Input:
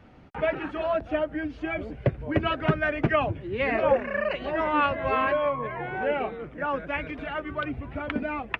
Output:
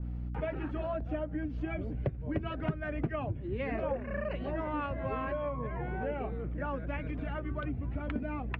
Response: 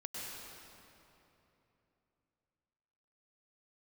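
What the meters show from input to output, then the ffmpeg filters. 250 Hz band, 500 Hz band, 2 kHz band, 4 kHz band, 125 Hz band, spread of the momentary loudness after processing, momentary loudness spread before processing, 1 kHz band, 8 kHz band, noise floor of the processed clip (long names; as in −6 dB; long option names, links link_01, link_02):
−5.0 dB, −9.5 dB, −13.0 dB, −14.5 dB, −2.5 dB, 2 LU, 8 LU, −11.5 dB, can't be measured, −40 dBFS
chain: -af "aeval=exprs='val(0)+0.0126*(sin(2*PI*60*n/s)+sin(2*PI*2*60*n/s)/2+sin(2*PI*3*60*n/s)/3+sin(2*PI*4*60*n/s)/4+sin(2*PI*5*60*n/s)/5)':channel_layout=same,lowshelf=frequency=370:gain=11.5,acompressor=threshold=-24dB:ratio=3,adynamicequalizer=threshold=0.00708:dfrequency=2200:dqfactor=0.7:tfrequency=2200:tqfactor=0.7:attack=5:release=100:ratio=0.375:range=2:mode=cutabove:tftype=highshelf,volume=-8dB"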